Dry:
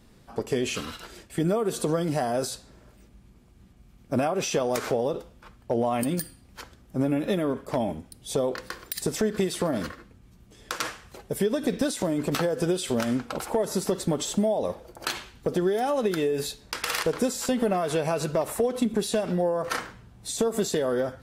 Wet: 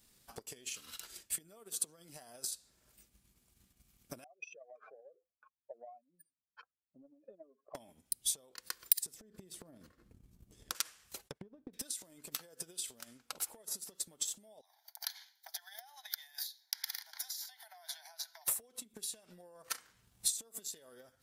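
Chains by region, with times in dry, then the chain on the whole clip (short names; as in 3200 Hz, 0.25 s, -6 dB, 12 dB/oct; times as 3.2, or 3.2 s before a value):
4.24–7.75 spectral contrast raised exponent 2.7 + vowel filter a + bell 1700 Hz +14 dB 0.46 oct
9.14–10.75 tilt shelf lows +9 dB, about 840 Hz + compressor 10:1, threshold -20 dBFS
11.27–11.73 spectral whitening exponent 0.6 + treble ducked by the level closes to 410 Hz, closed at -24.5 dBFS + expander -32 dBFS
14.61–18.48 steep high-pass 690 Hz 96 dB/oct + fixed phaser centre 1800 Hz, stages 8 + compressor 4:1, threshold -40 dBFS
whole clip: compressor 10:1, threshold -36 dBFS; pre-emphasis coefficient 0.9; transient shaper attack +11 dB, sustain -5 dB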